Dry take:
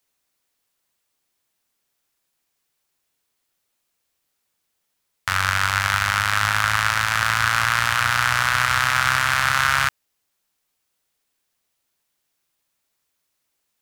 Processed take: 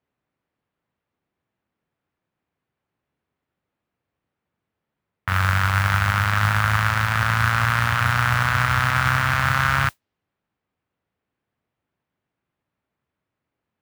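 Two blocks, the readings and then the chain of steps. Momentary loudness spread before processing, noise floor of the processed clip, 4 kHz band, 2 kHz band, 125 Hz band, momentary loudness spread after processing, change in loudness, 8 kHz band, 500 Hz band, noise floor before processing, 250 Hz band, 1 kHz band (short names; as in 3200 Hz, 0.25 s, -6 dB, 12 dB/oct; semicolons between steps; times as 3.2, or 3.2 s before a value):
3 LU, -84 dBFS, -5.5 dB, -2.0 dB, +9.0 dB, 2 LU, -1.0 dB, -8.0 dB, +2.0 dB, -75 dBFS, +8.0 dB, -0.5 dB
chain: low-pass opened by the level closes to 2500 Hz, open at -14.5 dBFS; HPF 110 Hz 12 dB/oct; RIAA curve playback; modulation noise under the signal 21 dB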